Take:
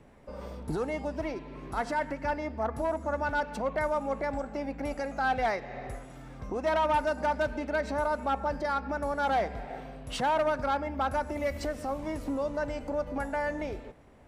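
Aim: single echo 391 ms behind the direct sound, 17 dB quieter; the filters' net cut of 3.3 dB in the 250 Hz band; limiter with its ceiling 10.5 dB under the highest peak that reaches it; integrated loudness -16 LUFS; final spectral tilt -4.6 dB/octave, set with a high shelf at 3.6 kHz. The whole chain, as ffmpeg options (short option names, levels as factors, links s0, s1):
-af "equalizer=f=250:t=o:g=-4,highshelf=f=3600:g=8.5,alimiter=level_in=1.41:limit=0.0631:level=0:latency=1,volume=0.708,aecho=1:1:391:0.141,volume=10.6"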